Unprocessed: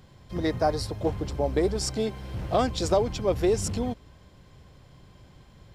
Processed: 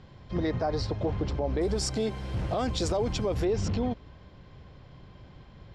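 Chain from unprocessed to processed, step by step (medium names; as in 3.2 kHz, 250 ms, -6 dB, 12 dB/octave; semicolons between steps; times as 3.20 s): Bessel low-pass 4 kHz, order 8, from 1.60 s 8.5 kHz, from 3.44 s 3.7 kHz; peak limiter -22.5 dBFS, peak gain reduction 12 dB; trim +2.5 dB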